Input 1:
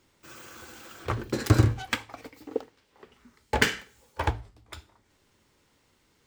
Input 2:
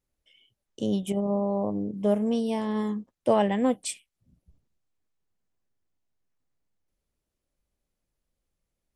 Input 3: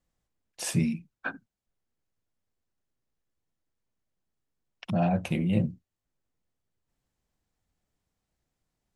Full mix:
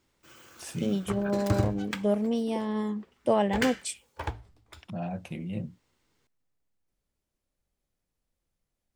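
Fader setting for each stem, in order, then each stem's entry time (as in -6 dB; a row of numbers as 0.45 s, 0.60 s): -7.0 dB, -2.0 dB, -9.0 dB; 0.00 s, 0.00 s, 0.00 s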